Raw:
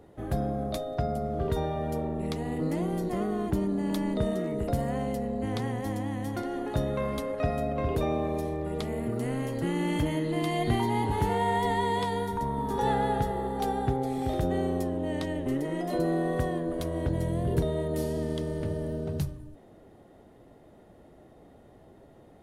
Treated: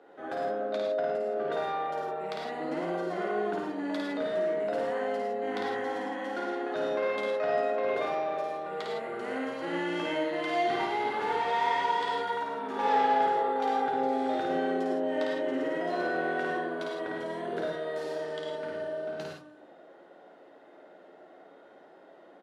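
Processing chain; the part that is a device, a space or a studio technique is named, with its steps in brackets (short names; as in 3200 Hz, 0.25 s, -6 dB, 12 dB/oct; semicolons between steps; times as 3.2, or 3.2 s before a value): intercom (BPF 370–3900 Hz; bell 1500 Hz +10 dB 0.22 oct; soft clip -26 dBFS, distortion -16 dB); Bessel high-pass 260 Hz, order 2; 0.6–1.09 high shelf 7800 Hz -12 dB; early reflections 11 ms -9.5 dB, 53 ms -3 dB; non-linear reverb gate 0.13 s rising, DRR 1 dB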